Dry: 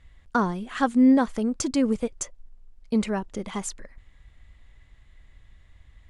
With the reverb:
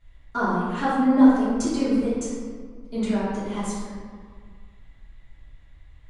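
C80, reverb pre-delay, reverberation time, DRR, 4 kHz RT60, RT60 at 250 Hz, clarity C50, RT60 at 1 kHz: 0.5 dB, 3 ms, 1.8 s, -12.5 dB, 1.0 s, 2.2 s, -2.5 dB, 1.9 s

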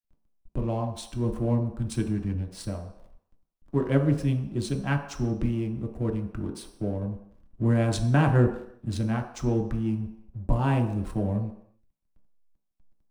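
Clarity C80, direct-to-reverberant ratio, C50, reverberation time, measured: 10.5 dB, 2.0 dB, 8.0 dB, 0.75 s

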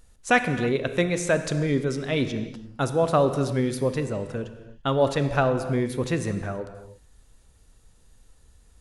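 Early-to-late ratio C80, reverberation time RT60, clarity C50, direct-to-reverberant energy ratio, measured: 11.0 dB, no single decay rate, 10.0 dB, 9.0 dB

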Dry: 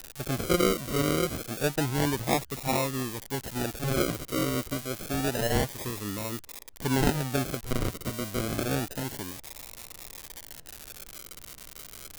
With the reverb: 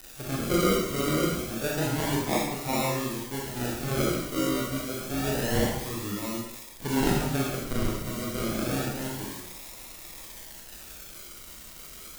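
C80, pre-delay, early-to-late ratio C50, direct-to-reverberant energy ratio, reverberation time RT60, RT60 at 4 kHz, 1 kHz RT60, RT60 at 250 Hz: 4.0 dB, 16 ms, 1.0 dB, -3.5 dB, 0.80 s, 0.75 s, 0.80 s, 0.80 s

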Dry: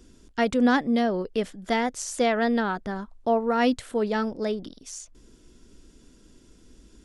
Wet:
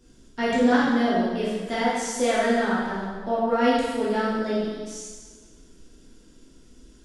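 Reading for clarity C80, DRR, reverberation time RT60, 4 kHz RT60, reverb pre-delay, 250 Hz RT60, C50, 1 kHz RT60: 1.0 dB, -8.5 dB, 1.5 s, 1.4 s, 5 ms, 1.5 s, -1.0 dB, 1.5 s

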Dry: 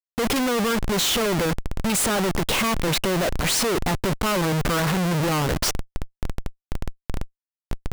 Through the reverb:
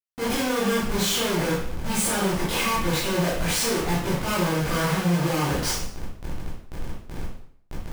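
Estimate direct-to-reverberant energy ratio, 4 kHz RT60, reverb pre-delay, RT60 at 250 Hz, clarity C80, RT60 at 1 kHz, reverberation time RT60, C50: -9.0 dB, 0.55 s, 7 ms, 0.65 s, 5.5 dB, 0.60 s, 0.60 s, 1.5 dB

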